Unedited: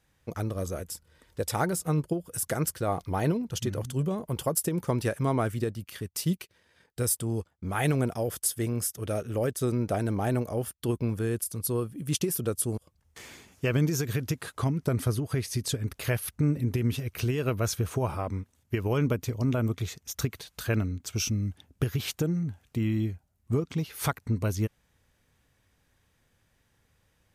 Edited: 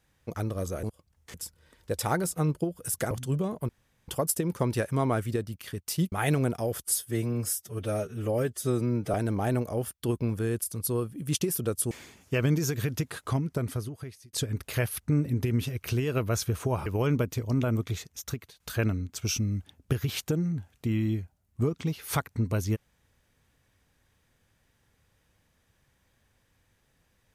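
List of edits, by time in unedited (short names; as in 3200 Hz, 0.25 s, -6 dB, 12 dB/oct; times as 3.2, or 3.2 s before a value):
2.6–3.78 cut
4.36 insert room tone 0.39 s
6.4–7.69 cut
8.4–9.94 stretch 1.5×
12.71–13.22 move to 0.83
14.6–15.64 fade out
18.17–18.77 cut
19.9–20.51 fade out linear, to -13 dB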